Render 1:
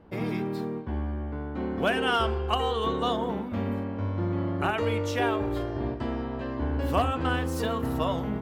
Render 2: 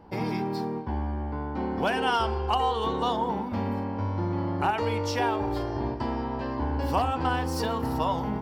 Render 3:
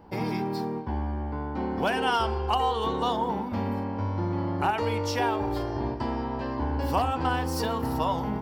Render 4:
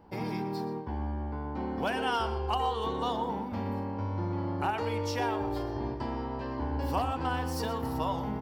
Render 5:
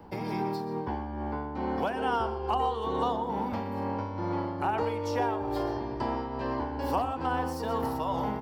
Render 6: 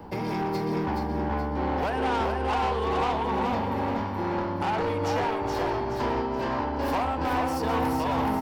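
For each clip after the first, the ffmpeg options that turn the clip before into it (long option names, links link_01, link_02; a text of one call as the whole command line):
ffmpeg -i in.wav -af "superequalizer=9b=2.51:14b=2.51,acompressor=threshold=-29dB:ratio=1.5,volume=1.5dB" out.wav
ffmpeg -i in.wav -af "highshelf=frequency=12000:gain=6.5" out.wav
ffmpeg -i in.wav -filter_complex "[0:a]asplit=2[link_01][link_02];[link_02]adelay=122.4,volume=-13dB,highshelf=frequency=4000:gain=-2.76[link_03];[link_01][link_03]amix=inputs=2:normalize=0,volume=-5dB" out.wav
ffmpeg -i in.wav -filter_complex "[0:a]tremolo=f=2.3:d=0.55,acrossover=split=160|380|1400[link_01][link_02][link_03][link_04];[link_01]acompressor=threshold=-49dB:ratio=4[link_05];[link_02]acompressor=threshold=-45dB:ratio=4[link_06];[link_03]acompressor=threshold=-34dB:ratio=4[link_07];[link_04]acompressor=threshold=-53dB:ratio=4[link_08];[link_05][link_06][link_07][link_08]amix=inputs=4:normalize=0,volume=7.5dB" out.wav
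ffmpeg -i in.wav -filter_complex "[0:a]asoftclip=type=tanh:threshold=-30.5dB,asplit=2[link_01][link_02];[link_02]aecho=0:1:424|848|1272|1696|2120:0.631|0.252|0.101|0.0404|0.0162[link_03];[link_01][link_03]amix=inputs=2:normalize=0,volume=6.5dB" out.wav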